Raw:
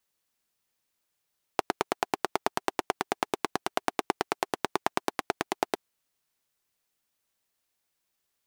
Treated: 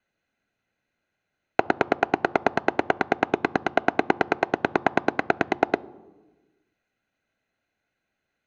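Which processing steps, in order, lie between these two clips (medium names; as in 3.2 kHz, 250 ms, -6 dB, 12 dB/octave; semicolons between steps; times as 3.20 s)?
low-pass 6.6 kHz 24 dB/octave; band-stop 960 Hz, Q 23; reverberation RT60 1.2 s, pre-delay 3 ms, DRR 20 dB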